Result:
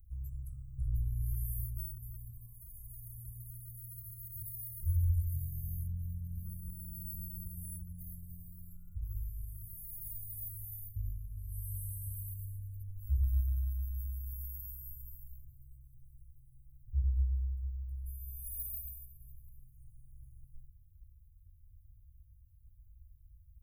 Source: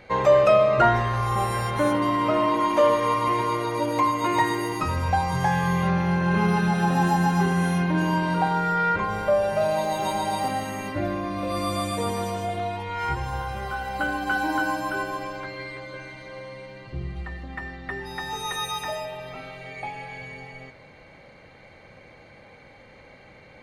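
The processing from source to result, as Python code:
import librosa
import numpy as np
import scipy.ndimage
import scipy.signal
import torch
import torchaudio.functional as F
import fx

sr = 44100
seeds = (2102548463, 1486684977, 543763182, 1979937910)

y = scipy.signal.sosfilt(scipy.signal.cheby2(4, 70, [300.0, 5100.0], 'bandstop', fs=sr, output='sos'), x)
y = fx.bass_treble(y, sr, bass_db=5, treble_db=14)
y = F.gain(torch.from_numpy(y), 1.5).numpy()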